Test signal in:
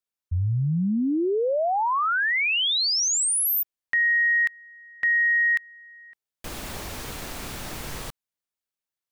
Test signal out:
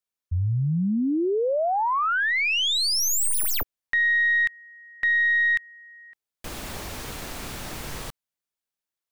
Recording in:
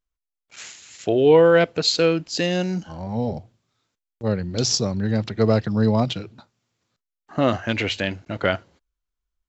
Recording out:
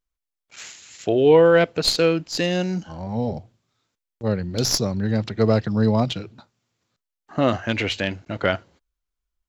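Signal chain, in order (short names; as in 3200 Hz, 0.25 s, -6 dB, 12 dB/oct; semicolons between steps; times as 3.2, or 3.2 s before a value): tracing distortion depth 0.027 ms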